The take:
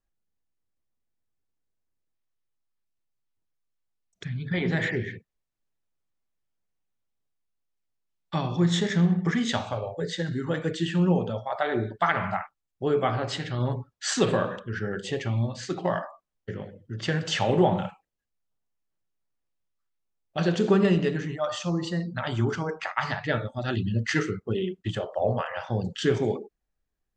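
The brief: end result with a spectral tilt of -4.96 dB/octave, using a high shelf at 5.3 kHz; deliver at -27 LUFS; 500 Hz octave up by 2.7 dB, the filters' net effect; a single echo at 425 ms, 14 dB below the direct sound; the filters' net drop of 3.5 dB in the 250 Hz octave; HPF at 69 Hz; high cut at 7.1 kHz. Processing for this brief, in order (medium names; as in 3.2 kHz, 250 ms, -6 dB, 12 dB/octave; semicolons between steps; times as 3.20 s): high-pass 69 Hz; low-pass 7.1 kHz; peaking EQ 250 Hz -8 dB; peaking EQ 500 Hz +6 dB; treble shelf 5.3 kHz -5.5 dB; delay 425 ms -14 dB; trim +0.5 dB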